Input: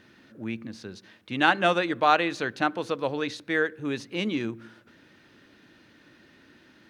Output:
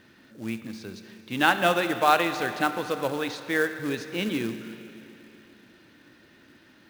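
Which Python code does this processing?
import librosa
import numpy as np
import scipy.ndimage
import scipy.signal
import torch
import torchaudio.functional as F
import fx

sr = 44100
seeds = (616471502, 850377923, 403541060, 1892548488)

y = fx.rev_schroeder(x, sr, rt60_s=3.1, comb_ms=28, drr_db=9.0)
y = fx.quant_float(y, sr, bits=2)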